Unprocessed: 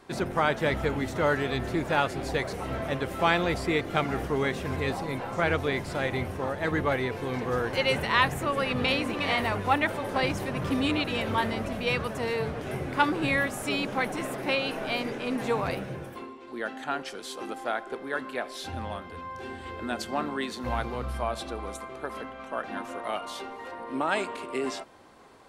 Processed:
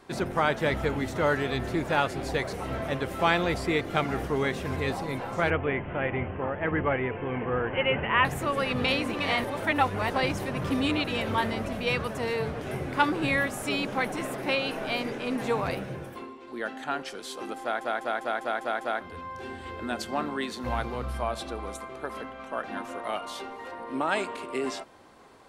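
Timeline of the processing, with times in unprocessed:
0:05.50–0:08.25: Butterworth low-pass 3,100 Hz 96 dB per octave
0:09.44–0:10.10: reverse
0:17.61: stutter in place 0.20 s, 7 plays

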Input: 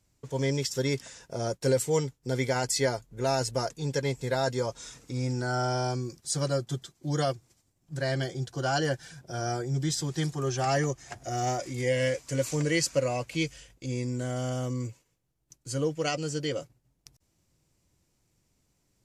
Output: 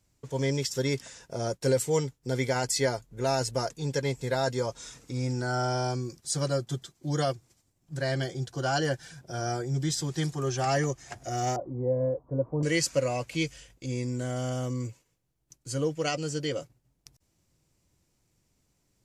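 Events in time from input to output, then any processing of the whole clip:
0:11.56–0:12.63: Butterworth low-pass 1,000 Hz

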